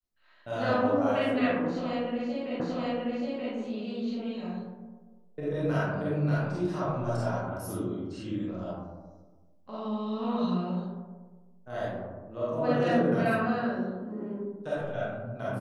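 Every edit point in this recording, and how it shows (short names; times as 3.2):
2.6 repeat of the last 0.93 s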